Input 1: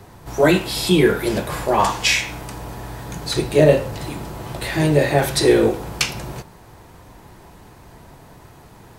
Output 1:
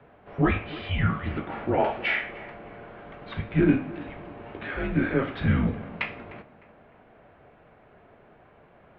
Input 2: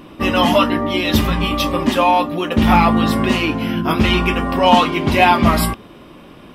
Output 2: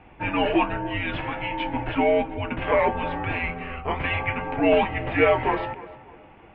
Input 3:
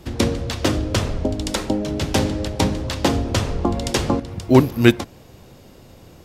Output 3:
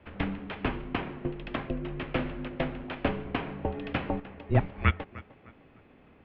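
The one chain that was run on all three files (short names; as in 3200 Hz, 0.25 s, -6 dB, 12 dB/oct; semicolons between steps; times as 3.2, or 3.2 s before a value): mistuned SSB -270 Hz 370–3000 Hz; tape echo 0.302 s, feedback 42%, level -16.5 dB, low-pass 2100 Hz; gain -6 dB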